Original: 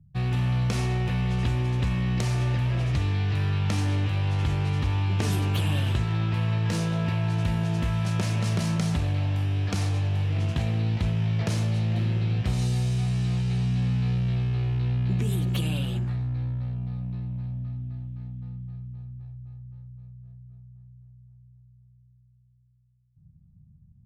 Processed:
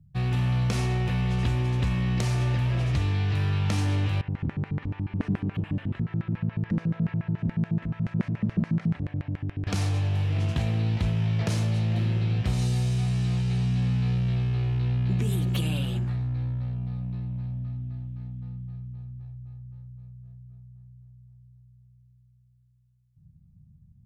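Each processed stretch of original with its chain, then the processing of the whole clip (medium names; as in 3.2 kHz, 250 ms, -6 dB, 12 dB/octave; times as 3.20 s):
4.21–9.67 s: tilt shelf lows +8.5 dB, about 1.1 kHz + LFO band-pass square 7 Hz 220–1900 Hz
whole clip: none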